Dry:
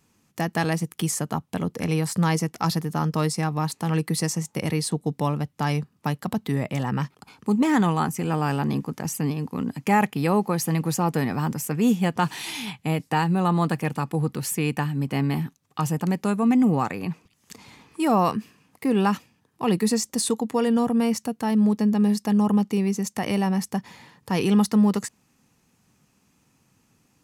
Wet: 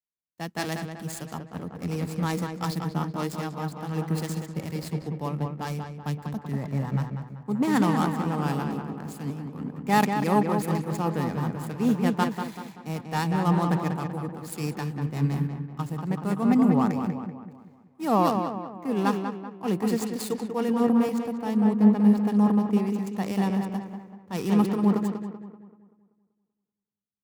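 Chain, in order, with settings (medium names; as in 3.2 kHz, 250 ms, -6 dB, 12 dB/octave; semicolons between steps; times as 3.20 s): median filter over 15 samples; treble shelf 5 kHz +7.5 dB; on a send: filtered feedback delay 192 ms, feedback 67%, low-pass 3.5 kHz, level -4 dB; on the sum: three bands expanded up and down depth 100%; trim -4.5 dB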